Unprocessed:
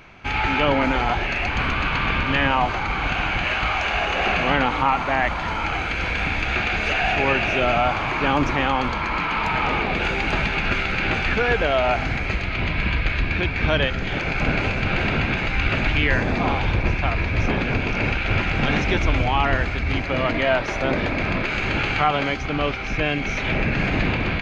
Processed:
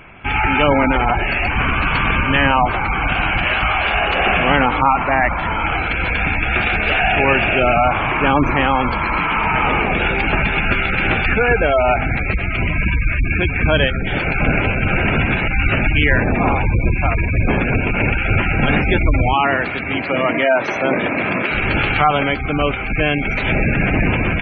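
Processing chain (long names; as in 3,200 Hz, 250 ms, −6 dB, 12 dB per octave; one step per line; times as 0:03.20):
0:19.33–0:21.51: high-pass filter 180 Hz 12 dB per octave
gate on every frequency bin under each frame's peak −20 dB strong
level +5.5 dB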